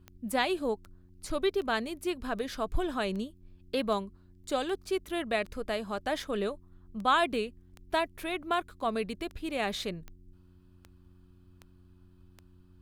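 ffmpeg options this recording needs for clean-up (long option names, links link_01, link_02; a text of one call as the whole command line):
ffmpeg -i in.wav -af "adeclick=threshold=4,bandreject=frequency=90.4:width_type=h:width=4,bandreject=frequency=180.8:width_type=h:width=4,bandreject=frequency=271.2:width_type=h:width=4,bandreject=frequency=361.6:width_type=h:width=4" out.wav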